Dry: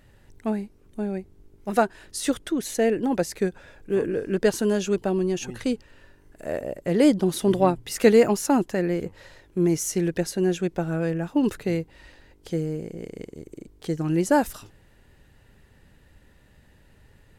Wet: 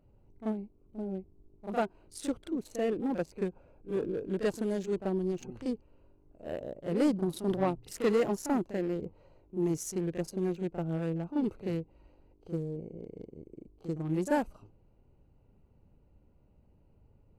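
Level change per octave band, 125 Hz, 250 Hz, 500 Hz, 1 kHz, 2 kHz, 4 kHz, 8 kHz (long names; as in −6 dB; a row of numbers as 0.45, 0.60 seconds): −7.5, −8.5, −9.5, −9.5, −11.0, −13.0, −13.0 decibels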